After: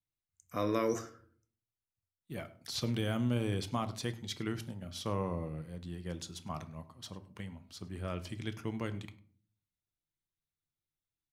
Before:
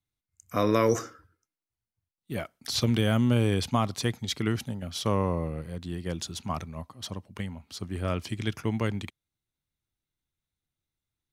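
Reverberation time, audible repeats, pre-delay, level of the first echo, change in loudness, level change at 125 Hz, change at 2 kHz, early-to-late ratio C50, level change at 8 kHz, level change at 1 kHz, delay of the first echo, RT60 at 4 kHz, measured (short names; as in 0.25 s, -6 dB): 0.45 s, 1, 5 ms, -21.5 dB, -8.5 dB, -9.0 dB, -8.5 dB, 15.5 dB, -9.0 dB, -8.5 dB, 0.102 s, 0.30 s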